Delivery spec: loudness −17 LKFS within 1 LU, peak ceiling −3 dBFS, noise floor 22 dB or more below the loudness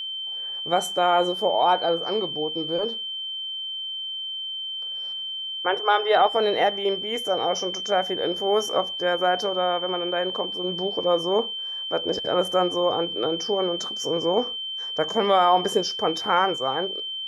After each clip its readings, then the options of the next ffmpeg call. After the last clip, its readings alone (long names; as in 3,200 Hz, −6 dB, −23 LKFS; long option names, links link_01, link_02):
interfering tone 3,100 Hz; level of the tone −29 dBFS; integrated loudness −24.0 LKFS; sample peak −7.0 dBFS; target loudness −17.0 LKFS
→ -af "bandreject=frequency=3100:width=30"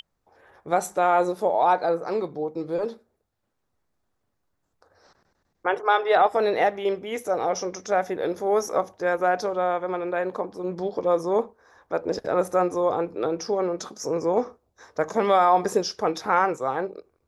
interfering tone none found; integrated loudness −24.5 LKFS; sample peak −7.5 dBFS; target loudness −17.0 LKFS
→ -af "volume=7.5dB,alimiter=limit=-3dB:level=0:latency=1"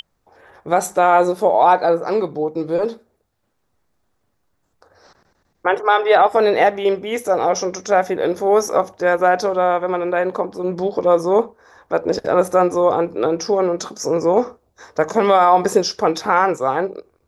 integrated loudness −17.5 LKFS; sample peak −3.0 dBFS; background noise floor −68 dBFS